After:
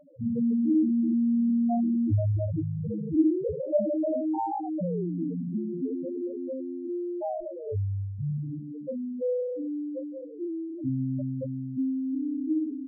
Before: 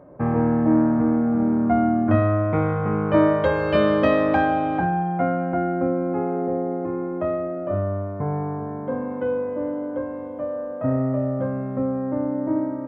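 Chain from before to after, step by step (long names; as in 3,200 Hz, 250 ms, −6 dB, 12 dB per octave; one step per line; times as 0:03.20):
sample-and-hold swept by an LFO 37×, swing 60% 0.4 Hz
spectral peaks only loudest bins 2
level −1 dB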